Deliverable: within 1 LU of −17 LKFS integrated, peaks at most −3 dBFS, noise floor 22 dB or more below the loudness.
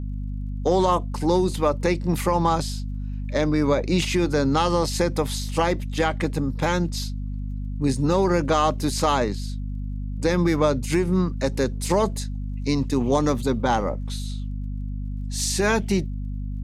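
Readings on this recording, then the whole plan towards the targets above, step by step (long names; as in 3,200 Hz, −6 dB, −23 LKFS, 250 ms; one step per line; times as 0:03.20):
crackle rate 34 per second; mains hum 50 Hz; hum harmonics up to 250 Hz; level of the hum −27 dBFS; integrated loudness −24.0 LKFS; sample peak −7.5 dBFS; target loudness −17.0 LKFS
→ click removal
mains-hum notches 50/100/150/200/250 Hz
level +7 dB
brickwall limiter −3 dBFS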